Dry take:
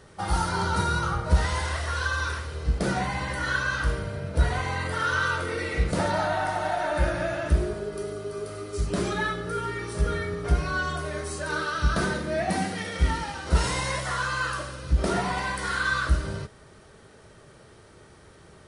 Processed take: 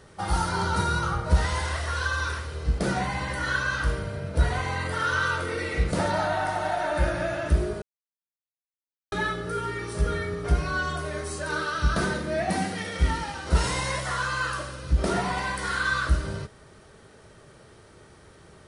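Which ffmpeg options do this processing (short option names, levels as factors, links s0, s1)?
-filter_complex "[0:a]asplit=3[s0][s1][s2];[s0]atrim=end=7.82,asetpts=PTS-STARTPTS,afade=t=out:st=7.816:d=0.004:c=hsin[s3];[s1]atrim=start=7.82:end=9.12,asetpts=PTS-STARTPTS,volume=0[s4];[s2]atrim=start=9.12,asetpts=PTS-STARTPTS,afade=t=in:d=0.004:c=hsin[s5];[s3][s4][s5]concat=n=3:v=0:a=1"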